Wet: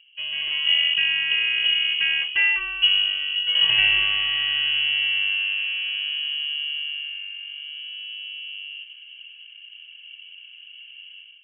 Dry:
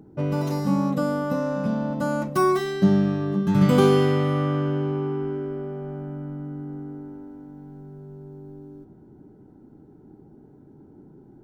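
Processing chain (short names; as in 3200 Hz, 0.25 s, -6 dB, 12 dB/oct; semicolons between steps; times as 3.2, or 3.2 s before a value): AGC gain up to 12.5 dB; low-pass opened by the level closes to 1500 Hz, open at -22 dBFS; inverted band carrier 3100 Hz; gain -7 dB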